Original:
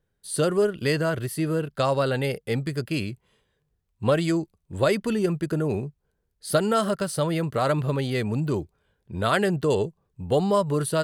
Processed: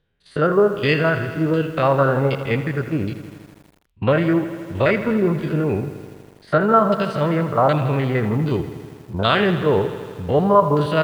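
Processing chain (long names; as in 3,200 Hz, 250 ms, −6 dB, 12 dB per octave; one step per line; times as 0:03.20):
spectrum averaged block by block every 50 ms
auto-filter low-pass saw down 1.3 Hz 880–3,700 Hz
feedback echo at a low word length 81 ms, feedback 80%, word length 8 bits, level −13 dB
level +5.5 dB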